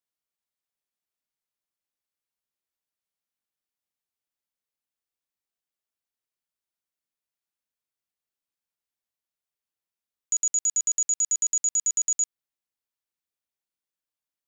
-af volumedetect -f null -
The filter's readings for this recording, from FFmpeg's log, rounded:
mean_volume: -34.4 dB
max_volume: -19.0 dB